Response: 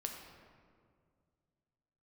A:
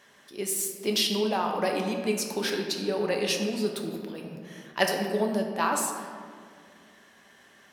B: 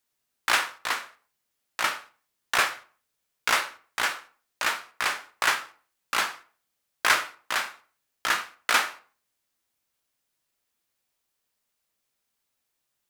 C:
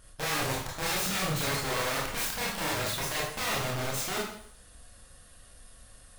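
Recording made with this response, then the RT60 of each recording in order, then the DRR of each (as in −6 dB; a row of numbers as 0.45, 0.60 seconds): A; 2.1, 0.40, 0.60 seconds; 2.0, 7.5, −4.5 decibels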